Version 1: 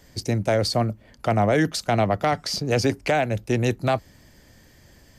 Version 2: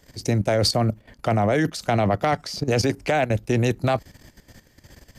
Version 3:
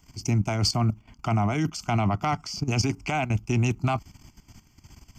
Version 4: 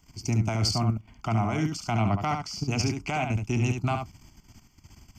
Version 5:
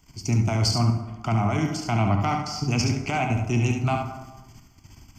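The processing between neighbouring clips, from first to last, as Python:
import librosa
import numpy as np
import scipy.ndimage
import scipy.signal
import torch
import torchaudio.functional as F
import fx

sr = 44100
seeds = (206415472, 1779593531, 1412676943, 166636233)

y1 = fx.level_steps(x, sr, step_db=13)
y1 = y1 * 10.0 ** (6.5 / 20.0)
y2 = fx.fixed_phaser(y1, sr, hz=2600.0, stages=8)
y3 = y2 + 10.0 ** (-6.0 / 20.0) * np.pad(y2, (int(71 * sr / 1000.0), 0))[:len(y2)]
y3 = y3 * 10.0 ** (-2.5 / 20.0)
y4 = fx.rev_plate(y3, sr, seeds[0], rt60_s=1.2, hf_ratio=0.5, predelay_ms=0, drr_db=5.0)
y4 = y4 * 10.0 ** (2.0 / 20.0)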